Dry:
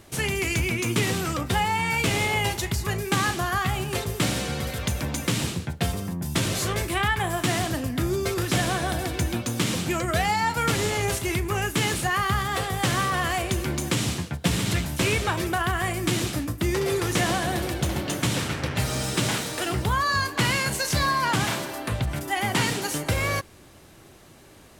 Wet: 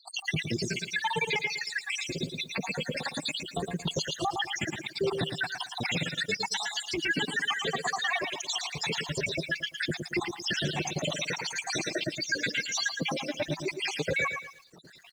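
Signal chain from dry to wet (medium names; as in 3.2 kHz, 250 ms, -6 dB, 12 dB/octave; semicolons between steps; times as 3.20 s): random holes in the spectrogram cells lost 85%; on a send: delay 167 ms -13 dB; on the sum: reverb removal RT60 1.9 s; cabinet simulation 160–5500 Hz, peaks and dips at 160 Hz +10 dB, 430 Hz +3 dB, 1.3 kHz -10 dB, 4.6 kHz -3 dB; phaser 0.12 Hz, delay 4.5 ms, feedback 51%; time stretch by phase-locked vocoder 0.61×; tilt EQ +2 dB/octave; in parallel at +1 dB: compression, threshold -39 dBFS, peak gain reduction 16 dB; on the sum: peak limiter -22.5 dBFS, peak gain reduction 9 dB; bit-crushed delay 113 ms, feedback 35%, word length 10-bit, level -6.5 dB; trim +2 dB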